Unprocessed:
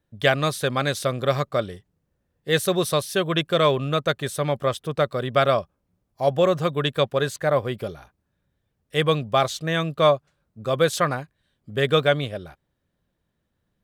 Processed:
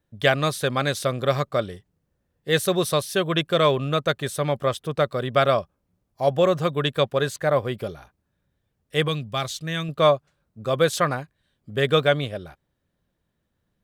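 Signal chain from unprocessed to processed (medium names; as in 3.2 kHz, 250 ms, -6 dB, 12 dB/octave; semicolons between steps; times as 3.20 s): 9.08–9.89 s: peaking EQ 650 Hz -10 dB 2.5 oct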